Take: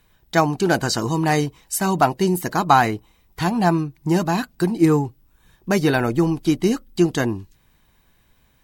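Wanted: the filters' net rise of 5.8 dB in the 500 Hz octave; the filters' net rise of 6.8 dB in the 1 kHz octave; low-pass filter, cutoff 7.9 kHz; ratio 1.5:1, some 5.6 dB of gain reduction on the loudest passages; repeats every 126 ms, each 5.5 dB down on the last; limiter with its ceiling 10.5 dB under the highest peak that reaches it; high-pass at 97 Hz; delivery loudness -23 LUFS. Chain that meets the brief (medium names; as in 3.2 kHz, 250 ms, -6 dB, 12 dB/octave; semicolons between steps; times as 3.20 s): high-pass 97 Hz; low-pass 7.9 kHz; peaking EQ 500 Hz +6.5 dB; peaking EQ 1 kHz +6.5 dB; compression 1.5:1, threshold -18 dBFS; peak limiter -10 dBFS; feedback delay 126 ms, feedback 53%, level -5.5 dB; trim -2.5 dB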